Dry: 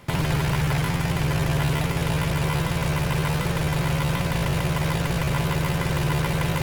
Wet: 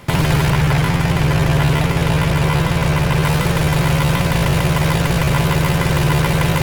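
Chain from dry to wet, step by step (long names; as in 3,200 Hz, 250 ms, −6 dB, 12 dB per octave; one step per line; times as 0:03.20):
0:00.50–0:03.23: high-shelf EQ 5,600 Hz −5 dB
level +8 dB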